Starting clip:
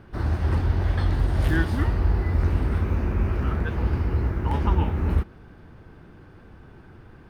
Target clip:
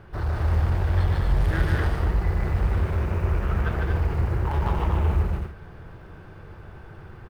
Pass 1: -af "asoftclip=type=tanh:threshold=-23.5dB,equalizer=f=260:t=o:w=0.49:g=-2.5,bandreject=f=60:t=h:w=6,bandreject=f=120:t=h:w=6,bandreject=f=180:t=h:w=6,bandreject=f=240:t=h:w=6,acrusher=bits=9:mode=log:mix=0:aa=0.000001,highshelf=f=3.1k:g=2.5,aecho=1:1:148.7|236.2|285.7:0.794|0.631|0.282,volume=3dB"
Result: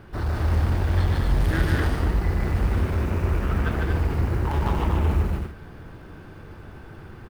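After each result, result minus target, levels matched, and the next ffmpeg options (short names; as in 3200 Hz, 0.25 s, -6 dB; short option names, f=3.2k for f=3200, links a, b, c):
8000 Hz band +5.5 dB; 250 Hz band +3.5 dB
-af "asoftclip=type=tanh:threshold=-23.5dB,equalizer=f=260:t=o:w=0.49:g=-2.5,bandreject=f=60:t=h:w=6,bandreject=f=120:t=h:w=6,bandreject=f=180:t=h:w=6,bandreject=f=240:t=h:w=6,acrusher=bits=9:mode=log:mix=0:aa=0.000001,highshelf=f=3.1k:g=-4.5,aecho=1:1:148.7|236.2|285.7:0.794|0.631|0.282,volume=3dB"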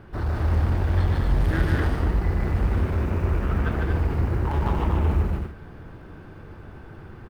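250 Hz band +3.5 dB
-af "asoftclip=type=tanh:threshold=-23.5dB,equalizer=f=260:t=o:w=0.49:g=-13,bandreject=f=60:t=h:w=6,bandreject=f=120:t=h:w=6,bandreject=f=180:t=h:w=6,bandreject=f=240:t=h:w=6,acrusher=bits=9:mode=log:mix=0:aa=0.000001,highshelf=f=3.1k:g=-4.5,aecho=1:1:148.7|236.2|285.7:0.794|0.631|0.282,volume=3dB"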